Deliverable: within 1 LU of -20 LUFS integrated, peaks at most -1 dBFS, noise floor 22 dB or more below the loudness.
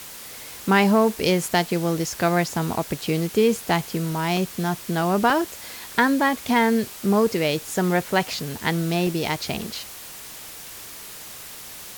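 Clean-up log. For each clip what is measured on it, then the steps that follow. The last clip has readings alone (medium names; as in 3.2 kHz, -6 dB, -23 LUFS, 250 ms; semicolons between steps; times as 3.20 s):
dropouts 6; longest dropout 1.5 ms; noise floor -39 dBFS; noise floor target -45 dBFS; loudness -22.5 LUFS; peak level -4.5 dBFS; loudness target -20.0 LUFS
-> interpolate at 3.70/4.37/5.30/8.10/9.07/9.63 s, 1.5 ms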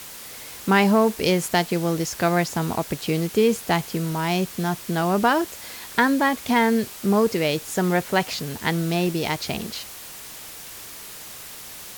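dropouts 0; noise floor -39 dBFS; noise floor target -45 dBFS
-> noise reduction 6 dB, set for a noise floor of -39 dBFS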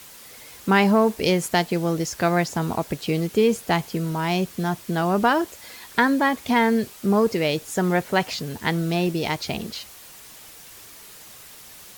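noise floor -45 dBFS; loudness -22.5 LUFS; peak level -4.5 dBFS; loudness target -20.0 LUFS
-> trim +2.5 dB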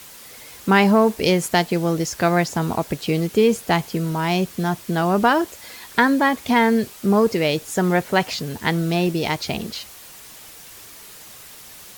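loudness -20.0 LUFS; peak level -2.0 dBFS; noise floor -42 dBFS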